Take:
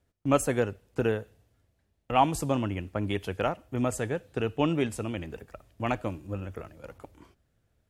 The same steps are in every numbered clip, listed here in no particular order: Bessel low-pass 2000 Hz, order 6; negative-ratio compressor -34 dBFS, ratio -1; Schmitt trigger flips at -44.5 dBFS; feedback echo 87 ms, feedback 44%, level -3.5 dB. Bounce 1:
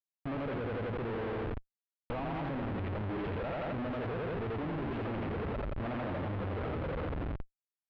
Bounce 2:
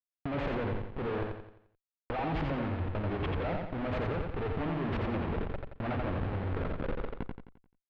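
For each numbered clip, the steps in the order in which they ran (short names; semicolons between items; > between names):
feedback echo > negative-ratio compressor > Schmitt trigger > Bessel low-pass; Schmitt trigger > Bessel low-pass > negative-ratio compressor > feedback echo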